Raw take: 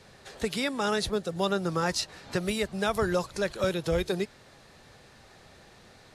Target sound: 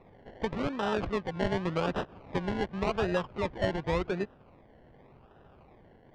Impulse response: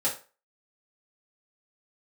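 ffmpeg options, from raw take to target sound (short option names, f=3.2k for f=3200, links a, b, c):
-af "acrusher=samples=28:mix=1:aa=0.000001:lfo=1:lforange=16.8:lforate=0.88,adynamicsmooth=sensitivity=5:basefreq=2.7k,lowpass=3.6k,volume=-2dB"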